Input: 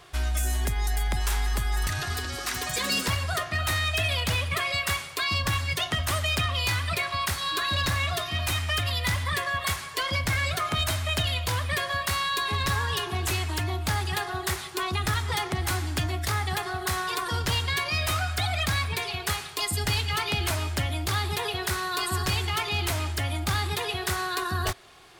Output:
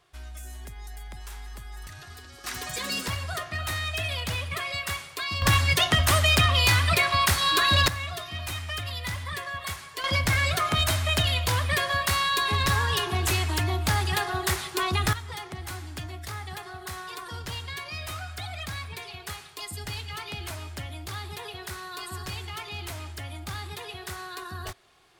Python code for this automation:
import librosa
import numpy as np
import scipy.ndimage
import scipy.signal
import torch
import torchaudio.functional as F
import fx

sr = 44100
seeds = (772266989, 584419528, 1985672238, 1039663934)

y = fx.gain(x, sr, db=fx.steps((0.0, -14.0), (2.44, -4.0), (5.42, 6.0), (7.88, -6.0), (10.04, 2.5), (15.13, -9.0)))